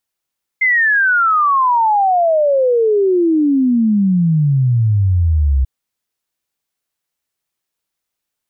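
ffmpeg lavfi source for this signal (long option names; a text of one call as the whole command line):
ffmpeg -f lavfi -i "aevalsrc='0.316*clip(min(t,5.04-t)/0.01,0,1)*sin(2*PI*2100*5.04/log(64/2100)*(exp(log(64/2100)*t/5.04)-1))':duration=5.04:sample_rate=44100" out.wav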